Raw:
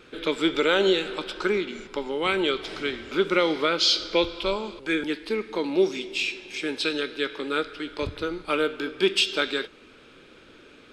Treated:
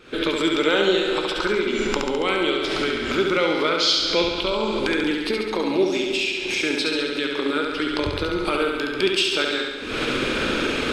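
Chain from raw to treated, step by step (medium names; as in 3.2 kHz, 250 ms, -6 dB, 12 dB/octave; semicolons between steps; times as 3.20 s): recorder AGC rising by 73 dB/s; on a send: flutter echo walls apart 11.9 m, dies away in 1.1 s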